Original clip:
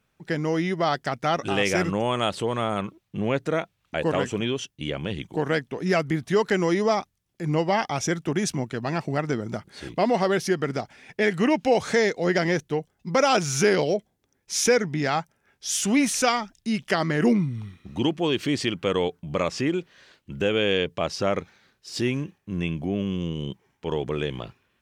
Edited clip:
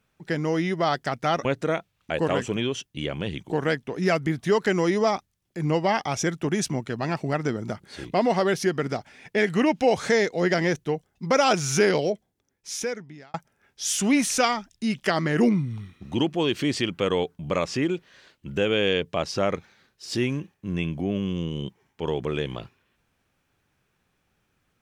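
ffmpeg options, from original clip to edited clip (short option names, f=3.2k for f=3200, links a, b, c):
-filter_complex "[0:a]asplit=3[a][b][c];[a]atrim=end=1.452[d];[b]atrim=start=3.288:end=15.18,asetpts=PTS-STARTPTS,afade=t=out:st=10.462:d=1.43[e];[c]atrim=start=15.18,asetpts=PTS-STARTPTS,afade=t=in:d=0.004:c=hsin[f];[e][f]concat=n=2:v=0:a=1[g];[d][g]acrossfade=d=0.004:c1=hsin:c2=hsin"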